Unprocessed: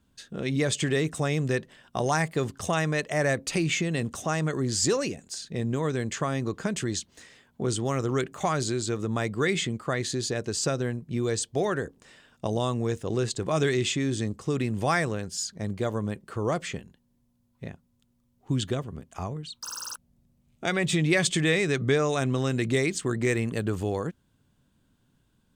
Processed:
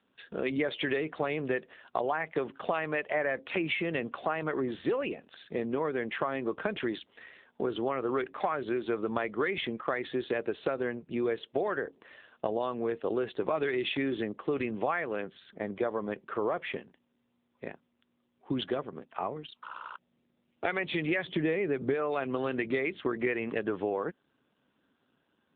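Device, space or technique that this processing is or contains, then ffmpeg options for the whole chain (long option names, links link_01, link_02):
voicemail: -filter_complex "[0:a]asplit=3[link_01][link_02][link_03];[link_01]afade=type=out:start_time=21.24:duration=0.02[link_04];[link_02]tiltshelf=frequency=790:gain=6.5,afade=type=in:start_time=21.24:duration=0.02,afade=type=out:start_time=21.93:duration=0.02[link_05];[link_03]afade=type=in:start_time=21.93:duration=0.02[link_06];[link_04][link_05][link_06]amix=inputs=3:normalize=0,highpass=370,lowpass=3300,acompressor=threshold=-31dB:ratio=8,volume=5.5dB" -ar 8000 -c:a libopencore_amrnb -b:a 7400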